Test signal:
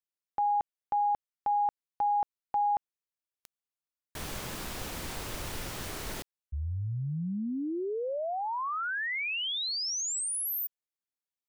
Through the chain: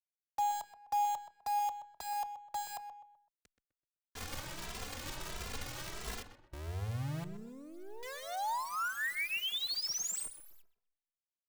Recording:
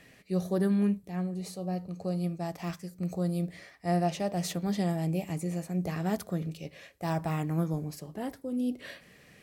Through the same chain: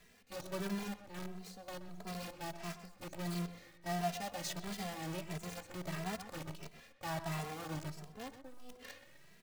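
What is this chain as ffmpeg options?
ffmpeg -i in.wav -filter_complex "[0:a]lowpass=frequency=8000:width=0.5412,lowpass=frequency=8000:width=1.3066,acrossover=split=130|650|3100[link_01][link_02][link_03][link_04];[link_02]acompressor=threshold=-43dB:ratio=12:attack=0.21:release=93:knee=6:detection=rms[link_05];[link_01][link_05][link_03][link_04]amix=inputs=4:normalize=0,acrusher=bits=7:dc=4:mix=0:aa=0.000001,asplit=2[link_06][link_07];[link_07]adelay=127,lowpass=frequency=2300:poles=1,volume=-10dB,asplit=2[link_08][link_09];[link_09]adelay=127,lowpass=frequency=2300:poles=1,volume=0.38,asplit=2[link_10][link_11];[link_11]adelay=127,lowpass=frequency=2300:poles=1,volume=0.38,asplit=2[link_12][link_13];[link_13]adelay=127,lowpass=frequency=2300:poles=1,volume=0.38[link_14];[link_06][link_08][link_10][link_12][link_14]amix=inputs=5:normalize=0,asplit=2[link_15][link_16];[link_16]adelay=2.6,afreqshift=1.5[link_17];[link_15][link_17]amix=inputs=2:normalize=1,volume=-1.5dB" out.wav

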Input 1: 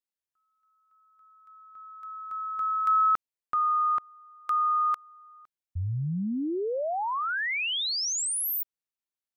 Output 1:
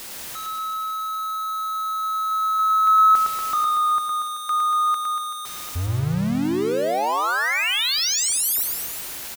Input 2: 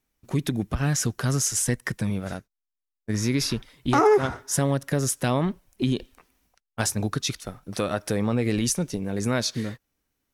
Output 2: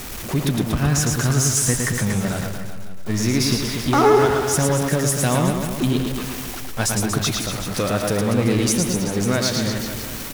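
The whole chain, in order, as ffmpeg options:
ffmpeg -i in.wav -af "aeval=exprs='val(0)+0.5*0.0398*sgn(val(0))':channel_layout=same,aecho=1:1:110|236.5|382|549.3|741.7:0.631|0.398|0.251|0.158|0.1,volume=1.5dB" out.wav

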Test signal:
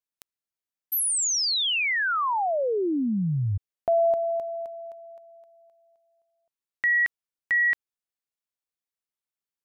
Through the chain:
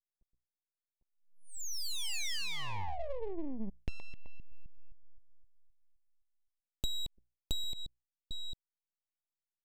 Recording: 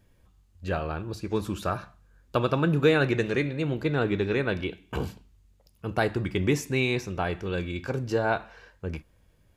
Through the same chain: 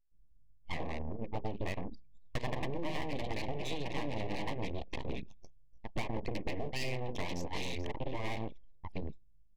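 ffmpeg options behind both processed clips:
ffmpeg -i in.wav -filter_complex "[0:a]lowpass=4300,bandreject=frequency=60:width_type=h:width=6,bandreject=frequency=120:width_type=h:width=6,bandreject=frequency=180:width_type=h:width=6,bandreject=frequency=240:width_type=h:width=6,bandreject=frequency=300:width_type=h:width=6,bandreject=frequency=360:width_type=h:width=6,acrossover=split=450|2900[link_01][link_02][link_03];[link_01]adelay=120[link_04];[link_03]adelay=800[link_05];[link_04][link_02][link_05]amix=inputs=3:normalize=0,aeval=exprs='abs(val(0))':channel_layout=same,asuperstop=centerf=1400:order=4:qfactor=1.7,anlmdn=0.398,acompressor=threshold=-40dB:ratio=6:attack=52:release=100:knee=6:detection=peak,asoftclip=type=hard:threshold=-28.5dB,volume=4.5dB" out.wav

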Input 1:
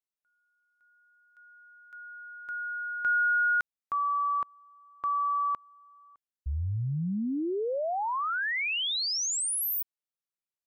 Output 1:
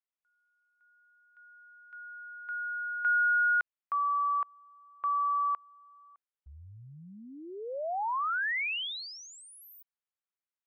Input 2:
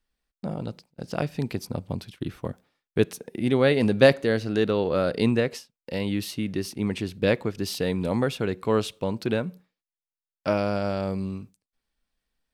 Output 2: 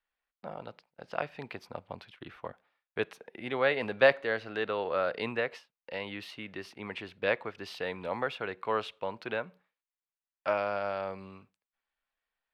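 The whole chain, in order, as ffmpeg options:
ffmpeg -i in.wav -filter_complex "[0:a]acrossover=split=580 3200:gain=0.112 1 0.0708[link_01][link_02][link_03];[link_01][link_02][link_03]amix=inputs=3:normalize=0" out.wav

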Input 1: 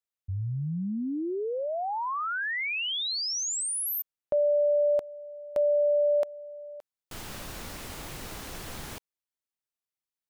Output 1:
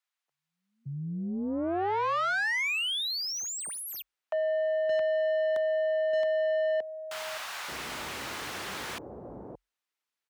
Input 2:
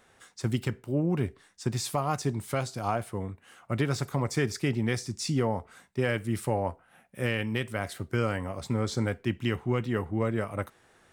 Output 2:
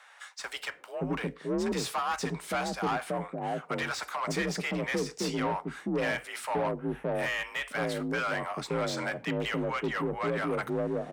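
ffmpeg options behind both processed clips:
ffmpeg -i in.wav -filter_complex "[0:a]acrossover=split=620[link_01][link_02];[link_01]adelay=570[link_03];[link_03][link_02]amix=inputs=2:normalize=0,asplit=2[link_04][link_05];[link_05]highpass=frequency=720:poles=1,volume=23dB,asoftclip=type=tanh:threshold=-15dB[link_06];[link_04][link_06]amix=inputs=2:normalize=0,lowpass=frequency=2600:poles=1,volume=-6dB,afreqshift=44,volume=-6dB" out.wav

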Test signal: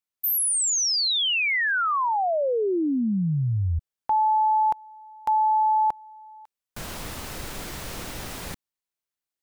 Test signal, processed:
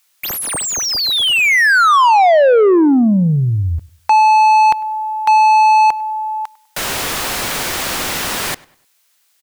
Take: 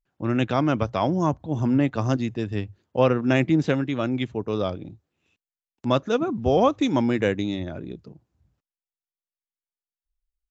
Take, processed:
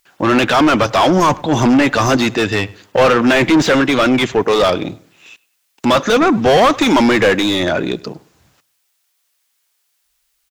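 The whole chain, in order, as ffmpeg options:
ffmpeg -i in.wav -filter_complex "[0:a]acrossover=split=2800[link_01][link_02];[link_02]acompressor=threshold=-37dB:ratio=4:attack=1:release=60[link_03];[link_01][link_03]amix=inputs=2:normalize=0,crystalizer=i=8.5:c=0,asplit=2[link_04][link_05];[link_05]highpass=frequency=720:poles=1,volume=31dB,asoftclip=type=tanh:threshold=-2dB[link_06];[link_04][link_06]amix=inputs=2:normalize=0,lowpass=frequency=1500:poles=1,volume=-6dB,asplit=2[link_07][link_08];[link_08]adelay=100,lowpass=frequency=3600:poles=1,volume=-22dB,asplit=2[link_09][link_10];[link_10]adelay=100,lowpass=frequency=3600:poles=1,volume=0.36,asplit=2[link_11][link_12];[link_12]adelay=100,lowpass=frequency=3600:poles=1,volume=0.36[link_13];[link_09][link_11][link_13]amix=inputs=3:normalize=0[link_14];[link_07][link_14]amix=inputs=2:normalize=0" out.wav

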